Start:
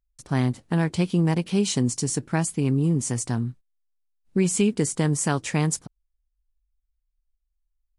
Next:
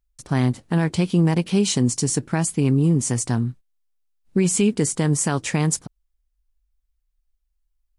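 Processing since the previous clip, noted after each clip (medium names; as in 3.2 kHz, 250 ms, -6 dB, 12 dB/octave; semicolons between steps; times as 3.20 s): peak limiter -14 dBFS, peak gain reduction 5 dB; trim +4 dB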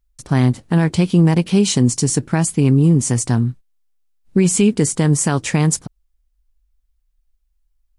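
bass shelf 180 Hz +3.5 dB; trim +3.5 dB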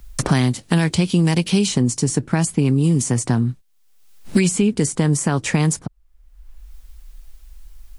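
three bands compressed up and down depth 100%; trim -3 dB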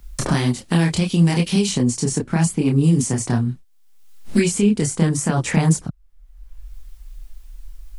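chorus voices 6, 1.5 Hz, delay 27 ms, depth 3 ms; trim +2 dB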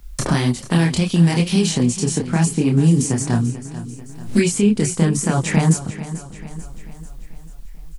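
feedback delay 440 ms, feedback 52%, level -14 dB; trim +1 dB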